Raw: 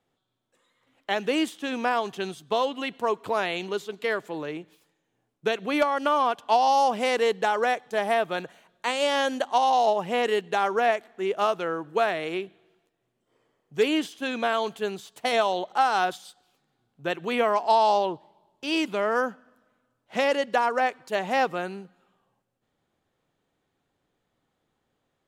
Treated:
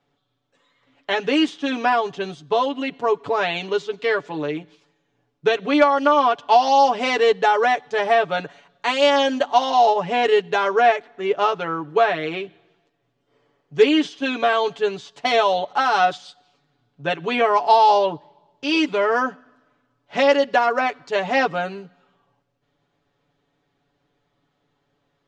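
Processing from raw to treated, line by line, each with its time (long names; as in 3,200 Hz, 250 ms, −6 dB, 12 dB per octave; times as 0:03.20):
0:01.95–0:03.41: parametric band 3,200 Hz −4 dB 3 octaves
0:10.92–0:12.37: high-shelf EQ 5,900 Hz −6 dB
whole clip: low-pass filter 6,100 Hz 24 dB per octave; comb filter 7 ms, depth 87%; level +3.5 dB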